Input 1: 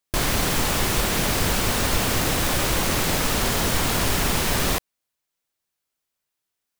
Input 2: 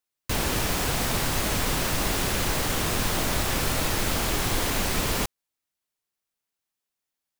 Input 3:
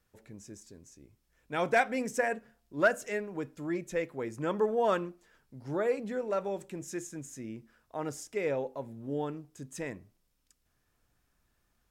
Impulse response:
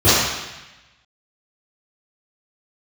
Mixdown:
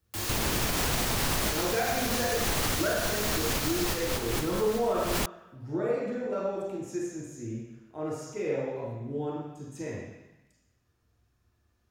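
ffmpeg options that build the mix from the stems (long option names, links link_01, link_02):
-filter_complex "[0:a]aeval=exprs='(mod(10.6*val(0)+1,2)-1)/10.6':channel_layout=same,volume=-11dB,afade=type=out:start_time=3.74:duration=0.38:silence=0.237137,asplit=2[link_01][link_02];[link_02]volume=-21.5dB[link_03];[1:a]volume=1.5dB[link_04];[2:a]volume=-8dB,asplit=3[link_05][link_06][link_07];[link_06]volume=-19.5dB[link_08];[link_07]apad=whole_len=326098[link_09];[link_04][link_09]sidechaincompress=threshold=-54dB:ratio=4:attack=6.6:release=142[link_10];[3:a]atrim=start_sample=2205[link_11];[link_03][link_08]amix=inputs=2:normalize=0[link_12];[link_12][link_11]afir=irnorm=-1:irlink=0[link_13];[link_01][link_10][link_05][link_13]amix=inputs=4:normalize=0,alimiter=limit=-18dB:level=0:latency=1:release=78"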